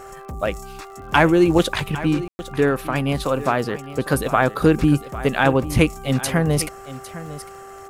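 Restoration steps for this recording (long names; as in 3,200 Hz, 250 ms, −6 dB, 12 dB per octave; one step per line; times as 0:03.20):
click removal
hum removal 391.5 Hz, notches 3
ambience match 0:02.28–0:02.39
echo removal 804 ms −15 dB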